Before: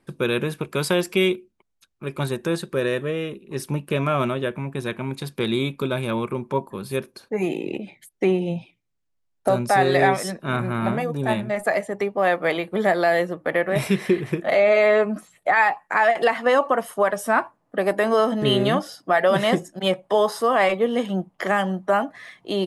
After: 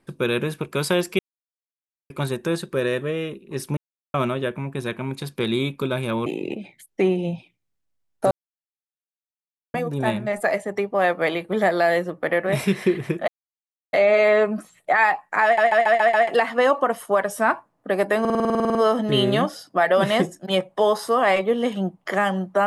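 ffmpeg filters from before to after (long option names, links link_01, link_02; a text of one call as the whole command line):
ffmpeg -i in.wav -filter_complex "[0:a]asplit=25[link_01][link_02][link_03][link_04][link_05][link_06][link_07][link_08][link_09][link_10][link_11][link_12][link_13][link_14][link_15][link_16][link_17][link_18][link_19][link_20][link_21][link_22][link_23][link_24][link_25];[link_01]atrim=end=1.19,asetpts=PTS-STARTPTS,afade=type=out:start_time=1.186:duration=0.004:curve=hsin[link_26];[link_02]atrim=start=1.19:end=2.1,asetpts=PTS-STARTPTS,volume=0[link_27];[link_03]atrim=start=2.1:end=3.77,asetpts=PTS-STARTPTS,afade=type=in:duration=0.004:curve=hsin,afade=type=out:start_time=1.666:duration=0.004:curve=hsin[link_28];[link_04]atrim=start=3.77:end=4.14,asetpts=PTS-STARTPTS,volume=0[link_29];[link_05]atrim=start=4.14:end=6.262,asetpts=PTS-STARTPTS,afade=type=in:duration=0.004:curve=hsin[link_30];[link_06]atrim=start=7.488:end=9.54,asetpts=PTS-STARTPTS,afade=type=out:start_time=2.048:duration=0.004:curve=hsin[link_31];[link_07]atrim=start=9.54:end=10.97,asetpts=PTS-STARTPTS,volume=0[link_32];[link_08]atrim=start=10.97:end=14.51,asetpts=PTS-STARTPTS,afade=type=in:duration=0.004:curve=hsin,afade=type=out:start_time=3.536:duration=0.004:curve=hsin,apad=pad_dur=0.65[link_33];[link_09]atrim=start=14.51:end=16.162,asetpts=PTS-STARTPTS,afade=type=in:duration=0.004:curve=hsin[link_34];[link_10]atrim=start=16.018:end=16.162[link_35];[link_11]atrim=start=16.018:end=16.162[link_36];[link_12]atrim=start=16.018:end=16.162[link_37];[link_13]atrim=start=16.018:end=16.162[link_38];[link_14]atrim=start=16.018:end=18.132[link_39];[link_15]atrim=start=18.078:end=18.132[link_40];[link_16]atrim=start=18.078:end=18.132[link_41];[link_17]atrim=start=18.078:end=18.132[link_42];[link_18]atrim=start=18.078:end=18.132[link_43];[link_19]atrim=start=18.078:end=18.132[link_44];[link_20]atrim=start=18.078:end=18.132[link_45];[link_21]atrim=start=18.078:end=18.132[link_46];[link_22]atrim=start=18.078:end=18.132[link_47];[link_23]atrim=start=18.078:end=18.132[link_48];[link_24]atrim=start=18.078:end=18.132[link_49];[link_25]atrim=start=18.078[link_50];[link_26][link_27][link_28][link_29][link_30]concat=n=5:v=0:a=1[link_51];[link_31][link_32][link_33][link_34]concat=n=4:v=0:a=1[link_52];[link_51][link_52]acrossfade=duration=0.004:curve1=hsin:curve2=hsin[link_53];[link_53][link_35]acrossfade=duration=0.004:curve1=hsin:curve2=hsin[link_54];[link_54][link_36]acrossfade=duration=0.004:curve1=hsin:curve2=hsin[link_55];[link_55][link_37]acrossfade=duration=0.004:curve1=hsin:curve2=hsin[link_56];[link_56][link_38]acrossfade=duration=0.004:curve1=hsin:curve2=hsin[link_57];[link_57][link_39]acrossfade=duration=0.004:curve1=hsin:curve2=hsin[link_58];[link_58][link_40]acrossfade=duration=0.004:curve1=hsin:curve2=hsin[link_59];[link_59][link_41]acrossfade=duration=0.004:curve1=hsin:curve2=hsin[link_60];[link_60][link_42]acrossfade=duration=0.004:curve1=hsin:curve2=hsin[link_61];[link_61][link_43]acrossfade=duration=0.004:curve1=hsin:curve2=hsin[link_62];[link_62][link_44]acrossfade=duration=0.004:curve1=hsin:curve2=hsin[link_63];[link_63][link_45]acrossfade=duration=0.004:curve1=hsin:curve2=hsin[link_64];[link_64][link_46]acrossfade=duration=0.004:curve1=hsin:curve2=hsin[link_65];[link_65][link_47]acrossfade=duration=0.004:curve1=hsin:curve2=hsin[link_66];[link_66][link_48]acrossfade=duration=0.004:curve1=hsin:curve2=hsin[link_67];[link_67][link_49]acrossfade=duration=0.004:curve1=hsin:curve2=hsin[link_68];[link_68][link_50]acrossfade=duration=0.004:curve1=hsin:curve2=hsin" out.wav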